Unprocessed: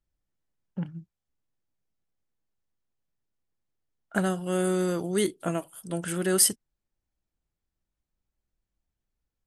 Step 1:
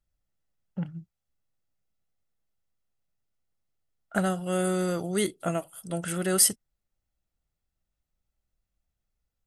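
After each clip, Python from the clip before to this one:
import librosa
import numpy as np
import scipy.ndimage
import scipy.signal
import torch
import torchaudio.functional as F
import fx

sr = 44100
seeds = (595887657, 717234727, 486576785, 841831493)

y = x + 0.31 * np.pad(x, (int(1.5 * sr / 1000.0), 0))[:len(x)]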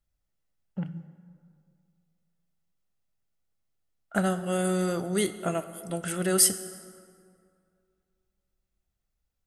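y = fx.rev_plate(x, sr, seeds[0], rt60_s=2.3, hf_ratio=0.55, predelay_ms=0, drr_db=11.5)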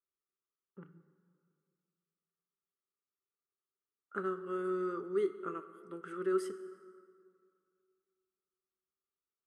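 y = fx.double_bandpass(x, sr, hz=690.0, octaves=1.6)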